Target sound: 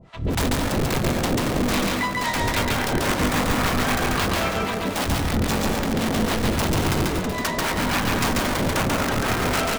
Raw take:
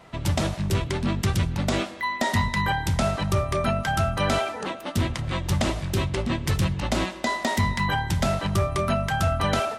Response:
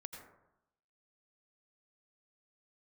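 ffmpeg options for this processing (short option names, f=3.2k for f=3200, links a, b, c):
-filter_complex "[0:a]lowpass=8.5k,lowshelf=f=240:g=11.5,dynaudnorm=f=270:g=3:m=10.5dB,aeval=exprs='(mod(3.35*val(0)+1,2)-1)/3.35':c=same,aecho=1:1:676:0.141,asoftclip=type=hard:threshold=-19dB,acrossover=split=610[a][b];[a]aeval=exprs='val(0)*(1-1/2+1/2*cos(2*PI*3.7*n/s))':c=same[c];[b]aeval=exprs='val(0)*(1-1/2-1/2*cos(2*PI*3.7*n/s))':c=same[d];[c][d]amix=inputs=2:normalize=0,asplit=2[e][f];[1:a]atrim=start_sample=2205,adelay=139[g];[f][g]afir=irnorm=-1:irlink=0,volume=4.5dB[h];[e][h]amix=inputs=2:normalize=0"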